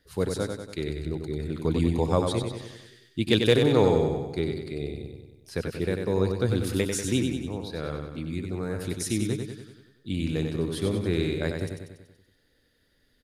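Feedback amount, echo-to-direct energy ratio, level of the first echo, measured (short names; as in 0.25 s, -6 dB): 55%, -4.0 dB, -5.5 dB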